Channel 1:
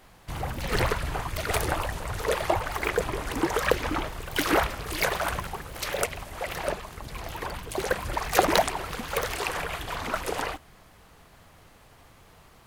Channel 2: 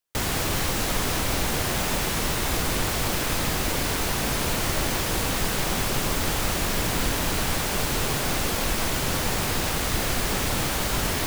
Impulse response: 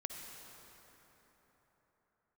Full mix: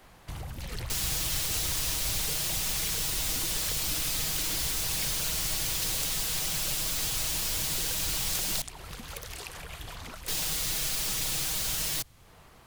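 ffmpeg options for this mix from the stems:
-filter_complex "[0:a]acompressor=threshold=-35dB:ratio=2,volume=-0.5dB[link_01];[1:a]aecho=1:1:6.3:0.86,acrossover=split=380[link_02][link_03];[link_02]acompressor=threshold=-37dB:ratio=3[link_04];[link_04][link_03]amix=inputs=2:normalize=0,adelay=750,volume=-2.5dB,asplit=3[link_05][link_06][link_07];[link_05]atrim=end=8.62,asetpts=PTS-STARTPTS,afade=type=out:start_time=8.616:duration=0.004:curve=hsin[link_08];[link_06]atrim=start=8.62:end=10.28,asetpts=PTS-STARTPTS,volume=0[link_09];[link_07]atrim=start=10.28,asetpts=PTS-STARTPTS,afade=type=in:duration=0.004:curve=hsin[link_10];[link_08][link_09][link_10]concat=n=3:v=0:a=1[link_11];[link_01][link_11]amix=inputs=2:normalize=0,acrossover=split=180|3000[link_12][link_13][link_14];[link_13]acompressor=threshold=-48dB:ratio=3[link_15];[link_12][link_15][link_14]amix=inputs=3:normalize=0"

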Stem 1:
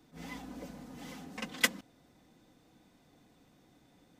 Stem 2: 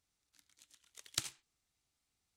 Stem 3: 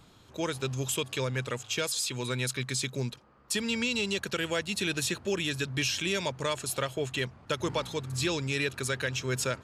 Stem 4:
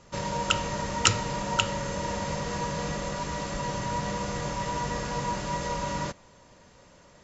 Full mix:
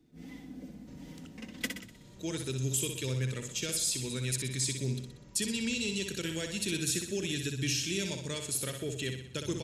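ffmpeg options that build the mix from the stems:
ffmpeg -i stem1.wav -i stem2.wav -i stem3.wav -i stem4.wav -filter_complex "[0:a]volume=-0.5dB,asplit=2[link_01][link_02];[link_02]volume=-6dB[link_03];[1:a]volume=-15.5dB[link_04];[2:a]equalizer=frequency=8700:width=0.45:gain=11.5,adelay=1850,volume=-2dB,asplit=2[link_05][link_06];[link_06]volume=-6.5dB[link_07];[3:a]acompressor=threshold=-34dB:ratio=4,adelay=750,volume=-14.5dB[link_08];[link_03][link_07]amix=inputs=2:normalize=0,aecho=0:1:62|124|186|248|310|372|434:1|0.51|0.26|0.133|0.0677|0.0345|0.0176[link_09];[link_01][link_04][link_05][link_08][link_09]amix=inputs=5:normalize=0,firequalizer=gain_entry='entry(340,0);entry(510,-8);entry(1000,-16);entry(1900,-8)':delay=0.05:min_phase=1" out.wav

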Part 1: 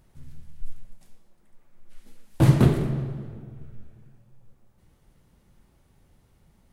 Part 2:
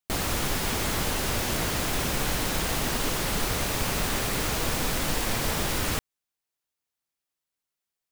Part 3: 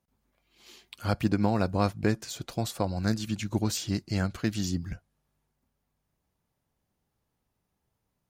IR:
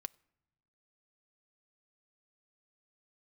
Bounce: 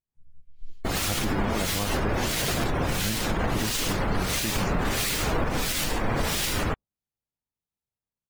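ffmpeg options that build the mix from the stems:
-filter_complex "[0:a]aeval=exprs='(mod(3.55*val(0)+1,2)-1)/3.55':channel_layout=same,volume=-17dB[link_01];[1:a]acrossover=split=1900[link_02][link_03];[link_02]aeval=exprs='val(0)*(1-0.7/2+0.7/2*cos(2*PI*1.5*n/s))':channel_layout=same[link_04];[link_03]aeval=exprs='val(0)*(1-0.7/2-0.7/2*cos(2*PI*1.5*n/s))':channel_layout=same[link_05];[link_04][link_05]amix=inputs=2:normalize=0,adelay=750,volume=0.5dB[link_06];[2:a]volume=-8dB[link_07];[link_01][link_06][link_07]amix=inputs=3:normalize=0,afftdn=noise_reduction=21:noise_floor=-40,dynaudnorm=framelen=100:gausssize=3:maxgain=10dB,alimiter=limit=-16.5dB:level=0:latency=1:release=141"

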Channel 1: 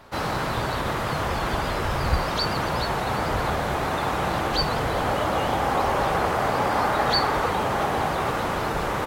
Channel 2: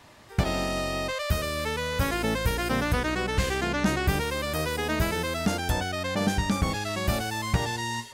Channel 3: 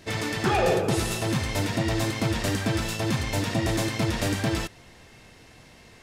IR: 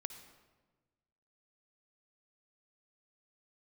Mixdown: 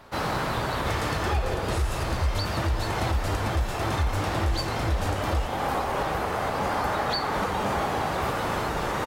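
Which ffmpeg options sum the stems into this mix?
-filter_complex "[0:a]volume=-1dB[link_01];[1:a]adelay=1150,volume=-8.5dB[link_02];[2:a]lowshelf=frequency=100:width_type=q:width=3:gain=14,adelay=800,volume=-2dB[link_03];[link_01][link_02][link_03]amix=inputs=3:normalize=0,alimiter=limit=-16.5dB:level=0:latency=1:release=381"

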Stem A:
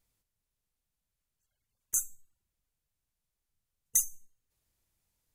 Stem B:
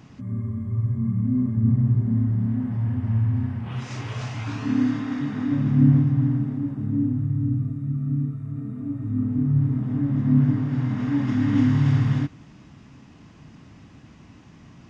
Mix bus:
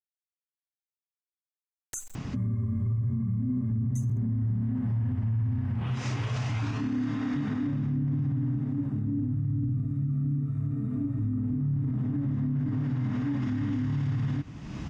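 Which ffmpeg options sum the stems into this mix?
ffmpeg -i stem1.wav -i stem2.wav -filter_complex "[0:a]lowpass=7300,aeval=exprs='val(0)*gte(abs(val(0)),0.00422)':channel_layout=same,volume=-5.5dB[link_01];[1:a]lowshelf=frequency=100:gain=8,adelay=2150,volume=1dB[link_02];[link_01][link_02]amix=inputs=2:normalize=0,acompressor=mode=upward:threshold=-25dB:ratio=2.5,alimiter=limit=-22.5dB:level=0:latency=1:release=88" out.wav

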